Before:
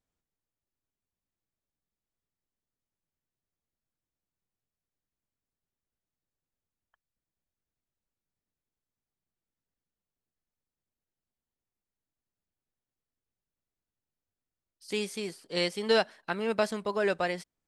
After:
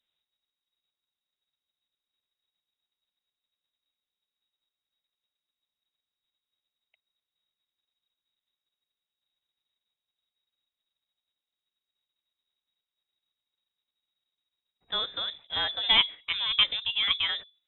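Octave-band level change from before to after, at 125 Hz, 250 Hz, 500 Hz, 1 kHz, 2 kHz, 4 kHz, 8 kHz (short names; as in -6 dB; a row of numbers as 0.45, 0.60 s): -9.0 dB, -16.0 dB, -17.5 dB, -1.5 dB, +2.5 dB, +14.0 dB, under -30 dB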